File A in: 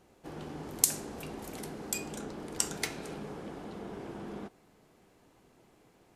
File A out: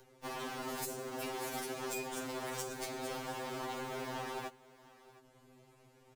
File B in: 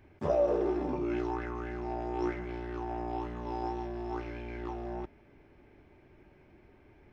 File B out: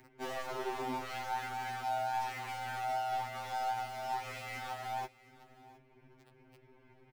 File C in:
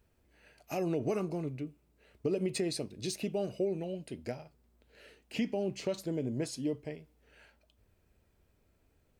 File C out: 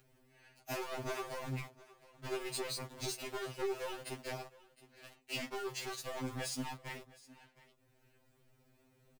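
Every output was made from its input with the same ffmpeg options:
ffmpeg -i in.wav -filter_complex "[0:a]acrossover=split=120|710[link_01][link_02][link_03];[link_01]acompressor=threshold=-57dB:ratio=4[link_04];[link_02]acompressor=threshold=-43dB:ratio=4[link_05];[link_03]acompressor=threshold=-46dB:ratio=4[link_06];[link_04][link_05][link_06]amix=inputs=3:normalize=0,asplit=2[link_07][link_08];[link_08]acrusher=bits=7:mix=0:aa=0.000001,volume=-9dB[link_09];[link_07][link_09]amix=inputs=2:normalize=0,asoftclip=type=tanh:threshold=-33.5dB,aeval=exprs='0.0211*(cos(1*acos(clip(val(0)/0.0211,-1,1)))-cos(1*PI/2))+0.00376*(cos(2*acos(clip(val(0)/0.0211,-1,1)))-cos(2*PI/2))+0.00299*(cos(5*acos(clip(val(0)/0.0211,-1,1)))-cos(5*PI/2))+0.00422*(cos(7*acos(clip(val(0)/0.0211,-1,1)))-cos(7*PI/2))+0.000668*(cos(8*acos(clip(val(0)/0.0211,-1,1)))-cos(8*PI/2))':channel_layout=same,acrossover=split=480|4100[link_10][link_11][link_12];[link_10]alimiter=level_in=19dB:limit=-24dB:level=0:latency=1:release=466,volume=-19dB[link_13];[link_13][link_11][link_12]amix=inputs=3:normalize=0,aecho=1:1:713:0.0944,acompressor=mode=upward:threshold=-60dB:ratio=2.5,afftfilt=real='re*2.45*eq(mod(b,6),0)':imag='im*2.45*eq(mod(b,6),0)':win_size=2048:overlap=0.75,volume=6.5dB" out.wav

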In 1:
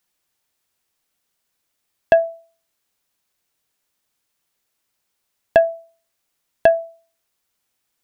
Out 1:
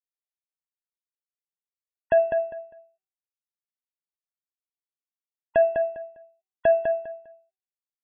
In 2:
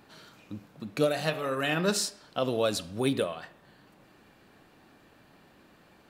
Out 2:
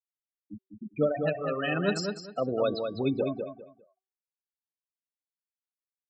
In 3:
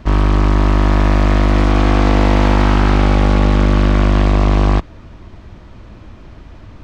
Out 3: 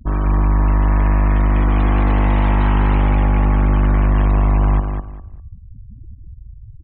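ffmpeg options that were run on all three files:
ffmpeg -i in.wav -filter_complex "[0:a]afftfilt=real='re*gte(hypot(re,im),0.0794)':imag='im*gte(hypot(re,im),0.0794)':win_size=1024:overlap=0.75,bandreject=frequency=381.3:width_type=h:width=4,bandreject=frequency=762.6:width_type=h:width=4,bandreject=frequency=1143.9:width_type=h:width=4,bandreject=frequency=1525.2:width_type=h:width=4,bandreject=frequency=1906.5:width_type=h:width=4,bandreject=frequency=2287.8:width_type=h:width=4,bandreject=frequency=2669.1:width_type=h:width=4,bandreject=frequency=3050.4:width_type=h:width=4,bandreject=frequency=3431.7:width_type=h:width=4,bandreject=frequency=3813:width_type=h:width=4,bandreject=frequency=4194.3:width_type=h:width=4,bandreject=frequency=4575.6:width_type=h:width=4,bandreject=frequency=4956.9:width_type=h:width=4,alimiter=limit=-12dB:level=0:latency=1:release=10,asplit=2[link_01][link_02];[link_02]adelay=201,lowpass=frequency=3800:poles=1,volume=-5.5dB,asplit=2[link_03][link_04];[link_04]adelay=201,lowpass=frequency=3800:poles=1,volume=0.23,asplit=2[link_05][link_06];[link_06]adelay=201,lowpass=frequency=3800:poles=1,volume=0.23[link_07];[link_03][link_05][link_07]amix=inputs=3:normalize=0[link_08];[link_01][link_08]amix=inputs=2:normalize=0" out.wav

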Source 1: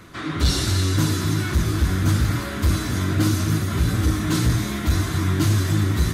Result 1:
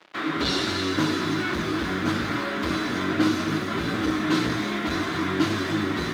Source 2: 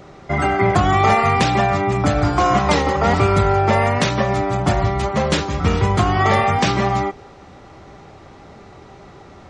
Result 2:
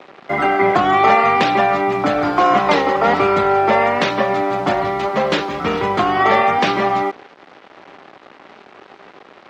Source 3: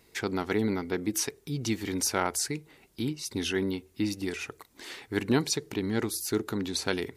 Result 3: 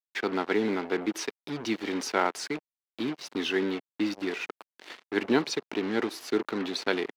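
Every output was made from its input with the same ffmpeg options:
ffmpeg -i in.wav -filter_complex "[0:a]acrusher=bits=5:mix=0:aa=0.5,acrossover=split=210 4500:gain=0.0631 1 0.1[link_01][link_02][link_03];[link_01][link_02][link_03]amix=inputs=3:normalize=0,volume=3dB" out.wav

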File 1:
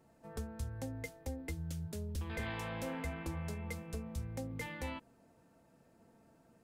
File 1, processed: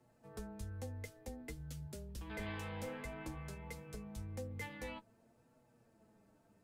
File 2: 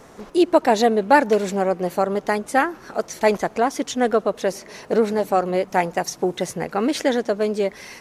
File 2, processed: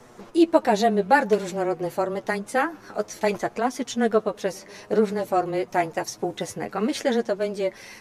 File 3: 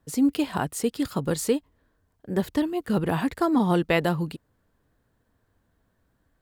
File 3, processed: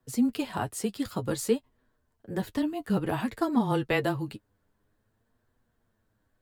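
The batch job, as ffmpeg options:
ffmpeg -i in.wav -af "afreqshift=-15,flanger=delay=8:depth=2.2:regen=31:speed=0.54:shape=triangular" out.wav

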